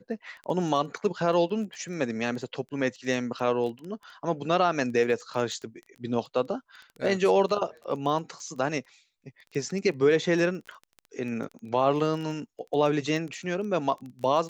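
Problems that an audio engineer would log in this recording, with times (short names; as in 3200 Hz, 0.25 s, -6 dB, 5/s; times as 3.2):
crackle 11/s -34 dBFS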